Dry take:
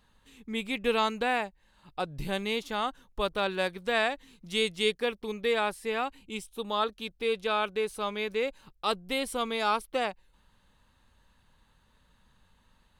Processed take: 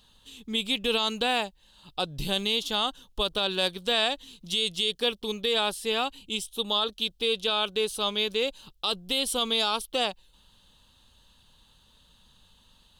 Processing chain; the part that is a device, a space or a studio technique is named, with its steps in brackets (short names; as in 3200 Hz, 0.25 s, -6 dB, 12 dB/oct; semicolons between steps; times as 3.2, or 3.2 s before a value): over-bright horn tweeter (resonant high shelf 2600 Hz +6.5 dB, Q 3; limiter -17 dBFS, peak gain reduction 10 dB); gain +2.5 dB